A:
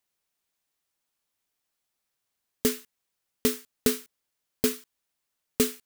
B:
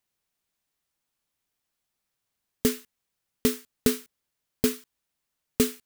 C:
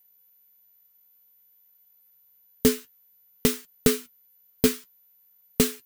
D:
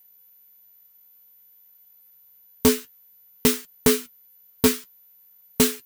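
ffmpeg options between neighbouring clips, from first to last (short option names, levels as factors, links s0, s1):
-af "bass=f=250:g=5,treble=f=4000:g=-1"
-af "aeval=exprs='val(0)+0.000891*sin(2*PI*14000*n/s)':c=same,flanger=delay=5.5:depth=5.9:regen=46:speed=0.55:shape=sinusoidal,volume=2.37"
-af "asoftclip=type=hard:threshold=0.141,volume=2"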